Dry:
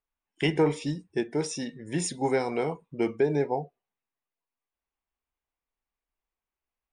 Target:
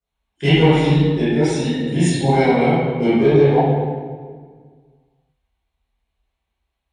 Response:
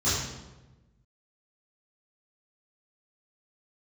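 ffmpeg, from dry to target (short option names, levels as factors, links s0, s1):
-filter_complex "[0:a]volume=7.08,asoftclip=hard,volume=0.141,bandreject=f=127.3:t=h:w=4,bandreject=f=254.6:t=h:w=4,bandreject=f=381.9:t=h:w=4,bandreject=f=509.2:t=h:w=4,bandreject=f=636.5:t=h:w=4,bandreject=f=763.8:t=h:w=4,bandreject=f=891.1:t=h:w=4,bandreject=f=1018.4:t=h:w=4,bandreject=f=1145.7:t=h:w=4,bandreject=f=1273:t=h:w=4,bandreject=f=1400.3:t=h:w=4,bandreject=f=1527.6:t=h:w=4,bandreject=f=1654.9:t=h:w=4,bandreject=f=1782.2:t=h:w=4,bandreject=f=1909.5:t=h:w=4,bandreject=f=2036.8:t=h:w=4,bandreject=f=2164.1:t=h:w=4,bandreject=f=2291.4:t=h:w=4,bandreject=f=2418.7:t=h:w=4,bandreject=f=2546:t=h:w=4,bandreject=f=2673.3:t=h:w=4,bandreject=f=2800.6:t=h:w=4,bandreject=f=2927.9:t=h:w=4,bandreject=f=3055.2:t=h:w=4,bandreject=f=3182.5:t=h:w=4,bandreject=f=3309.8:t=h:w=4,bandreject=f=3437.1:t=h:w=4,bandreject=f=3564.4:t=h:w=4,bandreject=f=3691.7:t=h:w=4,bandreject=f=3819:t=h:w=4,bandreject=f=3946.3:t=h:w=4,bandreject=f=4073.6:t=h:w=4,bandreject=f=4200.9:t=h:w=4,bandreject=f=4328.2:t=h:w=4,bandreject=f=4455.5:t=h:w=4,bandreject=f=4582.8:t=h:w=4,bandreject=f=4710.1:t=h:w=4,bandreject=f=4837.4:t=h:w=4[s0];[1:a]atrim=start_sample=2205,asetrate=25578,aresample=44100[s1];[s0][s1]afir=irnorm=-1:irlink=0,volume=0.562"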